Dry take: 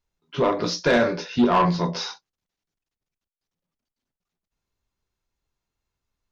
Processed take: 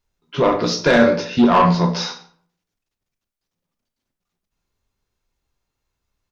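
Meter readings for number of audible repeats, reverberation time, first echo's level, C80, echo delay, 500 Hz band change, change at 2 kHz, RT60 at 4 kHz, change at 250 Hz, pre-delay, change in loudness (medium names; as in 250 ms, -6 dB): 1, 0.55 s, -22.5 dB, 15.0 dB, 148 ms, +5.5 dB, +5.5 dB, 0.40 s, +6.5 dB, 22 ms, +5.5 dB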